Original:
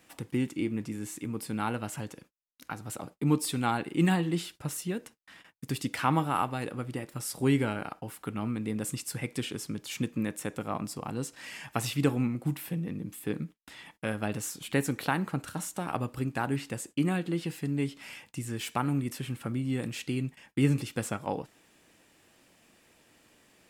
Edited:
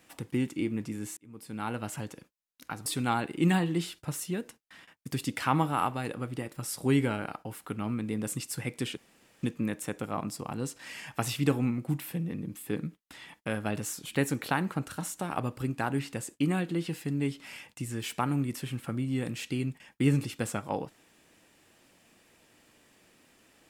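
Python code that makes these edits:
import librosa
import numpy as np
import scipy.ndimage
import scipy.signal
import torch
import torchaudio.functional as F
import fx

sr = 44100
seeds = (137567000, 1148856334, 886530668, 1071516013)

y = fx.edit(x, sr, fx.fade_in_span(start_s=1.17, length_s=0.7),
    fx.cut(start_s=2.86, length_s=0.57),
    fx.room_tone_fill(start_s=9.54, length_s=0.46), tone=tone)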